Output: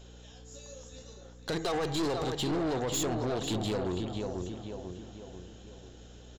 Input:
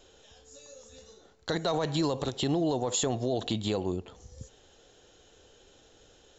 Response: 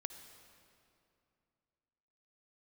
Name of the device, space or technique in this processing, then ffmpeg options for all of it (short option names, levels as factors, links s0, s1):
valve amplifier with mains hum: -filter_complex "[0:a]asettb=1/sr,asplit=3[s0][s1][s2];[s0]atrim=end=1.574[s3];[s1]atrim=start=1.57:end=2.22,asetpts=PTS-STARTPTS,afade=t=in:d=0.004:c=qsin,afade=t=out:st=0.646:d=0.004:c=qsin,aecho=1:1:2.5:0.74,atrim=end_sample=28665[s4];[s2]atrim=start=2.216[s5];[s3][s4]acrossfade=d=0.004:c1=hsin:c2=qsin[s6];[s6][s5]acrossfade=d=0.004:c1=qsin:c2=hsin,asplit=2[s7][s8];[s8]adelay=493,lowpass=f=3200:p=1,volume=0.447,asplit=2[s9][s10];[s10]adelay=493,lowpass=f=3200:p=1,volume=0.48,asplit=2[s11][s12];[s12]adelay=493,lowpass=f=3200:p=1,volume=0.48,asplit=2[s13][s14];[s14]adelay=493,lowpass=f=3200:p=1,volume=0.48,asplit=2[s15][s16];[s16]adelay=493,lowpass=f=3200:p=1,volume=0.48,asplit=2[s17][s18];[s18]adelay=493,lowpass=f=3200:p=1,volume=0.48[s19];[s7][s9][s11][s13][s15][s17][s19]amix=inputs=7:normalize=0,aeval=exprs='(tanh(31.6*val(0)+0.35)-tanh(0.35))/31.6':c=same,aeval=exprs='val(0)+0.00224*(sin(2*PI*60*n/s)+sin(2*PI*2*60*n/s)/2+sin(2*PI*3*60*n/s)/3+sin(2*PI*4*60*n/s)/4+sin(2*PI*5*60*n/s)/5)':c=same,volume=1.33"